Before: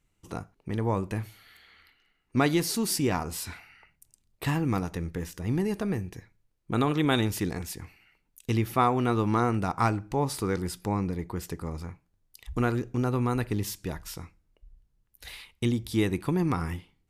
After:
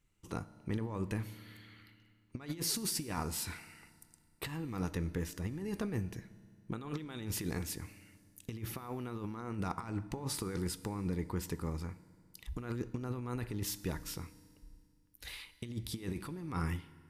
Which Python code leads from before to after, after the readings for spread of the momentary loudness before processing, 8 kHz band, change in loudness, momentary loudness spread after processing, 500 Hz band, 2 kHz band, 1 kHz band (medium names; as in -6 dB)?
16 LU, -4.0 dB, -10.5 dB, 15 LU, -12.5 dB, -11.0 dB, -15.0 dB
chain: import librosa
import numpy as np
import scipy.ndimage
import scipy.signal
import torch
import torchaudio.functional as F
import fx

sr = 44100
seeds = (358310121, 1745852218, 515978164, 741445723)

y = fx.peak_eq(x, sr, hz=690.0, db=-5.0, octaves=0.51)
y = fx.over_compress(y, sr, threshold_db=-30.0, ratio=-0.5)
y = fx.rev_fdn(y, sr, rt60_s=2.1, lf_ratio=1.35, hf_ratio=0.95, size_ms=10.0, drr_db=15.0)
y = F.gain(torch.from_numpy(y), -6.5).numpy()